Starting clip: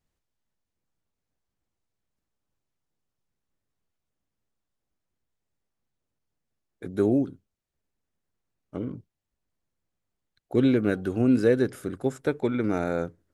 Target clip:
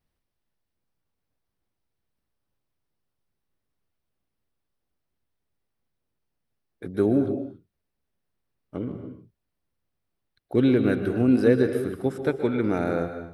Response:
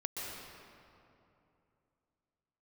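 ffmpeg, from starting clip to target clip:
-filter_complex "[0:a]equalizer=f=7k:w=4.5:g=-14.5,asplit=2[a][b];[1:a]atrim=start_sample=2205,afade=t=out:st=0.35:d=0.01,atrim=end_sample=15876[c];[b][c]afir=irnorm=-1:irlink=0,volume=-3dB[d];[a][d]amix=inputs=2:normalize=0,volume=-2.5dB"

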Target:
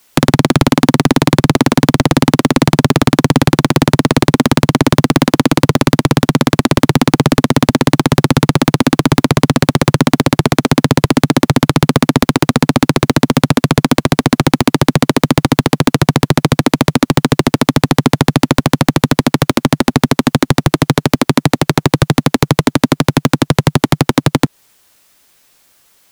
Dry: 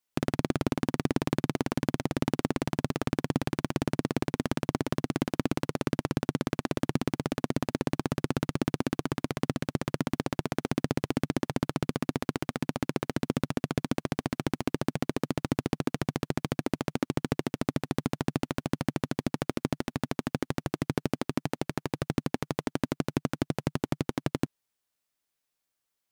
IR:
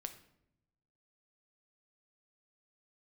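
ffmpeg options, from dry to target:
-filter_complex "[0:a]acrossover=split=370|1300|3200[a][b][c][d];[a]acompressor=threshold=-31dB:ratio=4[e];[b]acompressor=threshold=-38dB:ratio=4[f];[c]acompressor=threshold=-50dB:ratio=4[g];[d]acompressor=threshold=-50dB:ratio=4[h];[e][f][g][h]amix=inputs=4:normalize=0,apsyclip=33dB,volume=-1.5dB"

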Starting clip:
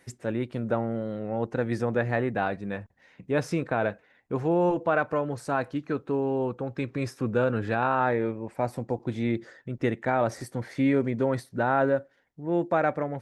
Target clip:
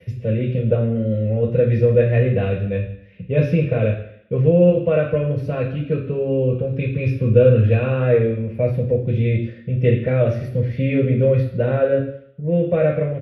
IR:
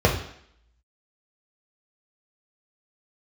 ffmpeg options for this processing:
-filter_complex "[0:a]acompressor=mode=upward:threshold=-46dB:ratio=2.5,agate=range=-33dB:threshold=-52dB:ratio=3:detection=peak,firequalizer=gain_entry='entry(230,0);entry(340,-7);entry(540,1);entry(810,-22);entry(1200,-9);entry(2700,10);entry(4600,-3);entry(7900,-15);entry(11000,5)':delay=0.05:min_phase=1[a];[1:a]atrim=start_sample=2205[b];[a][b]afir=irnorm=-1:irlink=0,volume=-13.5dB"

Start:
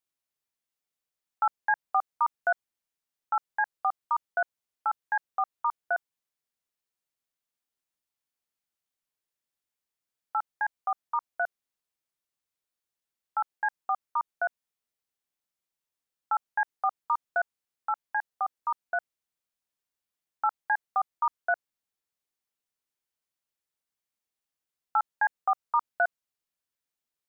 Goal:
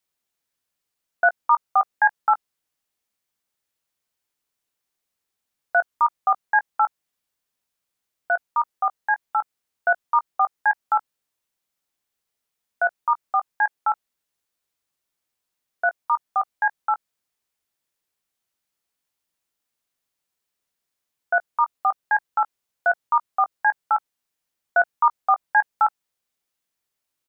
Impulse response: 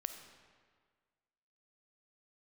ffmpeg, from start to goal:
-filter_complex "[0:a]areverse,asplit=2[a][b];[b]adelay=19,volume=-13dB[c];[a][c]amix=inputs=2:normalize=0,volume=7dB"

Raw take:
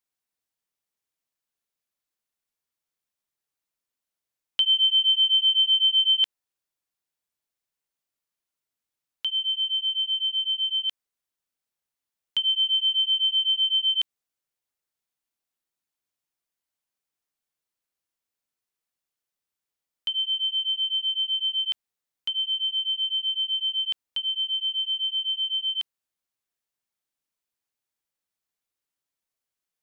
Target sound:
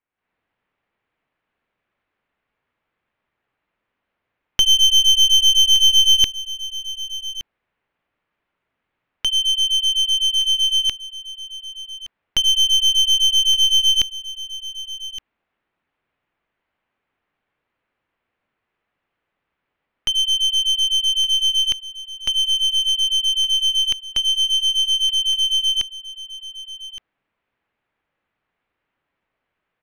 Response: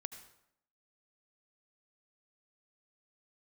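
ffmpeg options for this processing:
-filter_complex "[0:a]lowpass=f=2.5k:w=0.5412,lowpass=f=2.5k:w=1.3066,dynaudnorm=f=140:g=3:m=12dB,aeval=exprs='clip(val(0),-1,0.0473)':c=same,asplit=2[a][b];[b]aecho=0:1:1168:0.178[c];[a][c]amix=inputs=2:normalize=0,volume=6dB"

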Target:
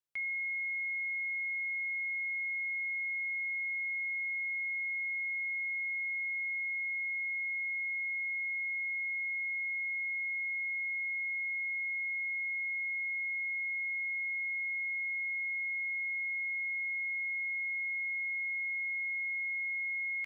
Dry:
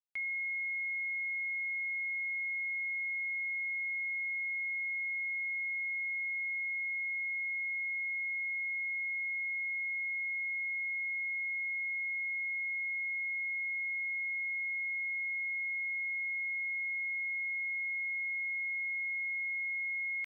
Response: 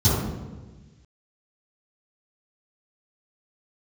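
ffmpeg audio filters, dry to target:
-filter_complex "[0:a]asplit=2[a][b];[1:a]atrim=start_sample=2205,lowpass=2k[c];[b][c]afir=irnorm=-1:irlink=0,volume=-33.5dB[d];[a][d]amix=inputs=2:normalize=0"

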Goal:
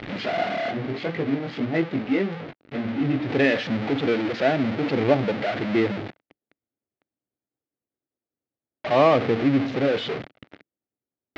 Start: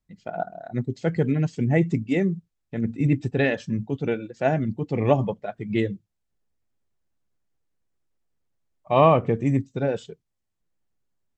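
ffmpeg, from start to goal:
-filter_complex "[0:a]aeval=exprs='val(0)+0.5*0.112*sgn(val(0))':c=same,asplit=3[a][b][c];[a]afade=t=out:st=0.7:d=0.02[d];[b]flanger=delay=18:depth=5.5:speed=1.7,afade=t=in:st=0.7:d=0.02,afade=t=out:st=3.27:d=0.02[e];[c]afade=t=in:st=3.27:d=0.02[f];[d][e][f]amix=inputs=3:normalize=0,adynamicsmooth=sensitivity=3.5:basefreq=1.2k,highpass=160,equalizer=f=170:t=q:w=4:g=-9,equalizer=f=290:t=q:w=4:g=4,equalizer=f=1k:t=q:w=4:g=-6,equalizer=f=2.1k:t=q:w=4:g=4,lowpass=f=4.2k:w=0.5412,lowpass=f=4.2k:w=1.3066,volume=-1.5dB"

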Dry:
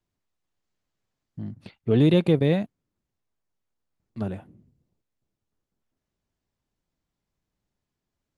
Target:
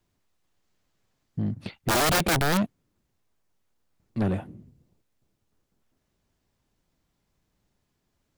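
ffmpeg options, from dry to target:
-af "aeval=exprs='(mod(7.5*val(0)+1,2)-1)/7.5':c=same,aeval=exprs='0.133*(cos(1*acos(clip(val(0)/0.133,-1,1)))-cos(1*PI/2))+0.0422*(cos(5*acos(clip(val(0)/0.133,-1,1)))-cos(5*PI/2))':c=same"

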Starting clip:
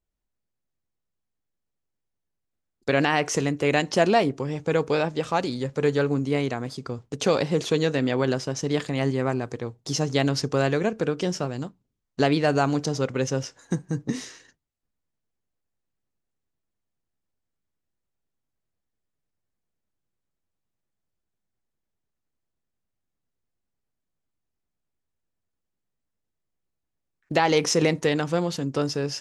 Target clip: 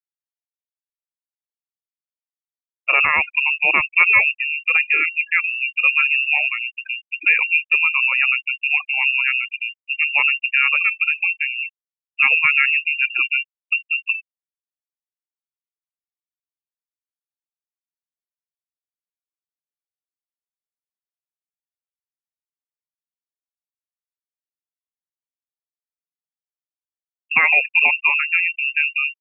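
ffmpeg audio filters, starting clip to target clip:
-af "lowpass=f=2.5k:t=q:w=0.5098,lowpass=f=2.5k:t=q:w=0.6013,lowpass=f=2.5k:t=q:w=0.9,lowpass=f=2.5k:t=q:w=2.563,afreqshift=-2900,bandreject=f=1.5k:w=16,afftfilt=real='re*gte(hypot(re,im),0.0631)':imag='im*gte(hypot(re,im),0.0631)':win_size=1024:overlap=0.75,volume=5.5dB"

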